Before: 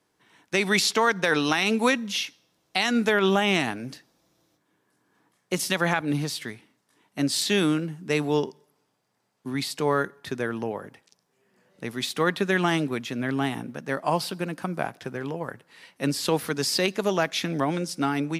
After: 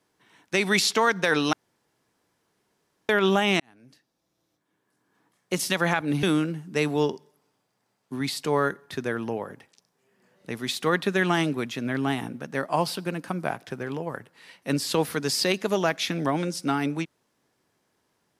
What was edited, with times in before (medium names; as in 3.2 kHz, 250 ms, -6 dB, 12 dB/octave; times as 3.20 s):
1.53–3.09 s: room tone
3.60–5.58 s: fade in
6.23–7.57 s: delete